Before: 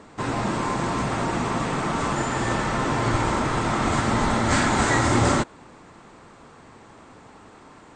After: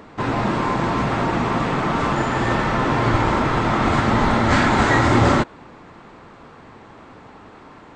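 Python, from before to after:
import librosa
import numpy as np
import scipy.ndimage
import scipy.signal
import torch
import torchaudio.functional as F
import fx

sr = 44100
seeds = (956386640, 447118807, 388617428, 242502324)

y = scipy.signal.sosfilt(scipy.signal.butter(2, 4100.0, 'lowpass', fs=sr, output='sos'), x)
y = fx.wow_flutter(y, sr, seeds[0], rate_hz=2.1, depth_cents=20.0)
y = y * 10.0 ** (4.5 / 20.0)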